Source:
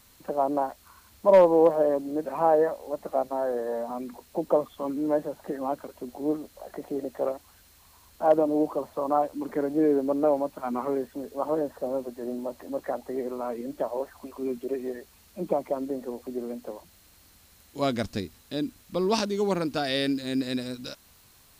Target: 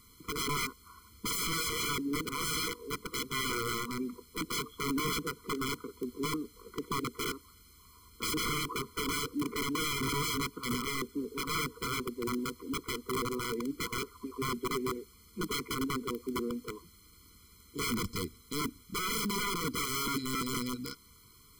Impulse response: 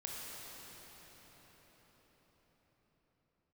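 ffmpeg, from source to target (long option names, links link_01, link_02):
-filter_complex "[0:a]asplit=2[link_01][link_02];[1:a]atrim=start_sample=2205,afade=type=out:start_time=0.16:duration=0.01,atrim=end_sample=7497[link_03];[link_02][link_03]afir=irnorm=-1:irlink=0,volume=-20dB[link_04];[link_01][link_04]amix=inputs=2:normalize=0,aeval=exprs='(mod(18.8*val(0)+1,2)-1)/18.8':channel_layout=same,afftfilt=real='re*eq(mod(floor(b*sr/1024/490),2),0)':imag='im*eq(mod(floor(b*sr/1024/490),2),0)':win_size=1024:overlap=0.75"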